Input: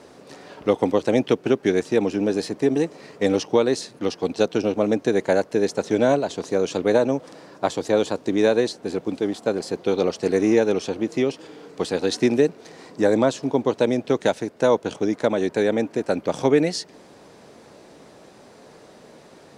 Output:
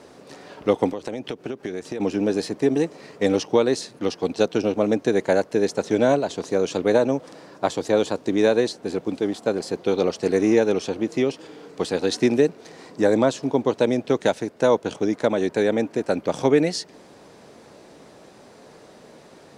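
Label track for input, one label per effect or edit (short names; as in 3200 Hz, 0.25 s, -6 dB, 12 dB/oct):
0.890000	2.000000	compressor 12:1, threshold -25 dBFS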